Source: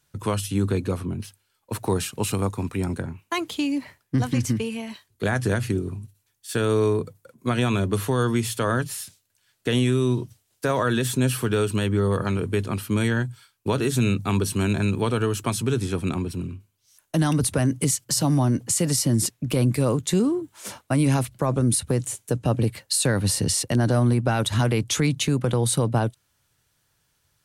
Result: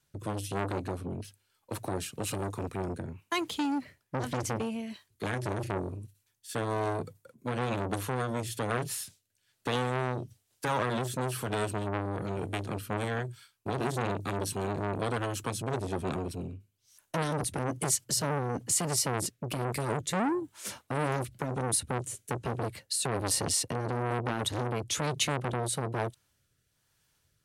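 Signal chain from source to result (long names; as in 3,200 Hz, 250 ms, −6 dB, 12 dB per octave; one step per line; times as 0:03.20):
rotating-speaker cabinet horn 1.1 Hz
saturating transformer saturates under 1,300 Hz
level −2 dB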